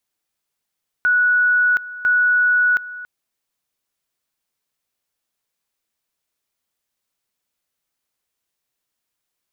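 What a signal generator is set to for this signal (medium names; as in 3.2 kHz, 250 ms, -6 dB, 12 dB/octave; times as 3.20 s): two-level tone 1.47 kHz -12.5 dBFS, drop 17 dB, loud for 0.72 s, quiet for 0.28 s, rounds 2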